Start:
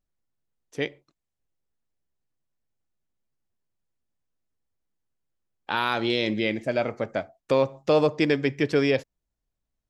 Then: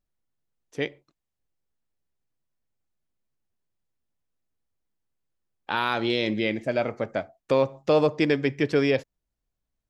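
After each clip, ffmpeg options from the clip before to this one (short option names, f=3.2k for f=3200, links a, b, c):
-af "highshelf=f=5.1k:g=-3.5"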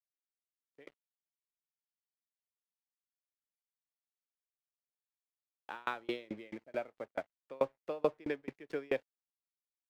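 -filter_complex "[0:a]acrossover=split=270 3000:gain=0.224 1 0.178[a][b][c];[a][b][c]amix=inputs=3:normalize=0,aeval=exprs='sgn(val(0))*max(abs(val(0))-0.00473,0)':c=same,aeval=exprs='val(0)*pow(10,-32*if(lt(mod(4.6*n/s,1),2*abs(4.6)/1000),1-mod(4.6*n/s,1)/(2*abs(4.6)/1000),(mod(4.6*n/s,1)-2*abs(4.6)/1000)/(1-2*abs(4.6)/1000))/20)':c=same,volume=-4dB"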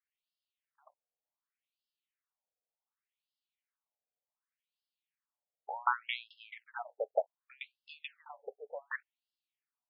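-af "afftfilt=real='re*between(b*sr/1024,550*pow(3800/550,0.5+0.5*sin(2*PI*0.67*pts/sr))/1.41,550*pow(3800/550,0.5+0.5*sin(2*PI*0.67*pts/sr))*1.41)':imag='im*between(b*sr/1024,550*pow(3800/550,0.5+0.5*sin(2*PI*0.67*pts/sr))/1.41,550*pow(3800/550,0.5+0.5*sin(2*PI*0.67*pts/sr))*1.41)':win_size=1024:overlap=0.75,volume=9dB"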